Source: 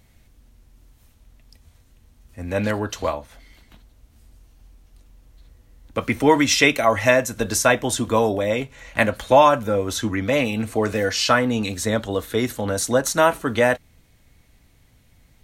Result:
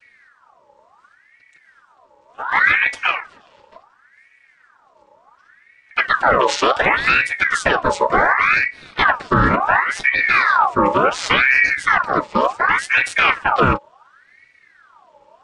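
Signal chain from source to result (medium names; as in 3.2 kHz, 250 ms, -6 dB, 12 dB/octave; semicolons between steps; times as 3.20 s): vocoder on a held chord major triad, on C3; loudness maximiser +13 dB; ring modulator with a swept carrier 1.4 kHz, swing 50%, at 0.69 Hz; trim -2.5 dB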